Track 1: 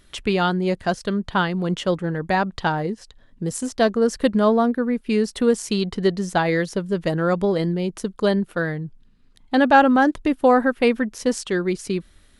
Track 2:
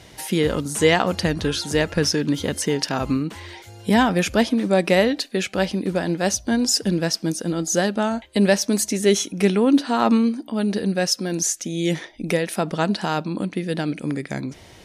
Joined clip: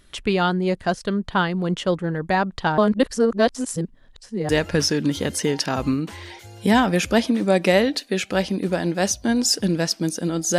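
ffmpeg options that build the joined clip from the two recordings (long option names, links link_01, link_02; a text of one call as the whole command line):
ffmpeg -i cue0.wav -i cue1.wav -filter_complex "[0:a]apad=whole_dur=10.58,atrim=end=10.58,asplit=2[link_01][link_02];[link_01]atrim=end=2.782[link_03];[link_02]atrim=start=2.778:end=4.492,asetpts=PTS-STARTPTS,areverse[link_04];[1:a]atrim=start=1.718:end=7.81[link_05];[link_03][link_04]acrossfade=duration=0.004:curve1=hsin:curve2=hsin[link_06];[link_06][link_05]acrossfade=duration=0.004:curve1=hsin:curve2=hsin" out.wav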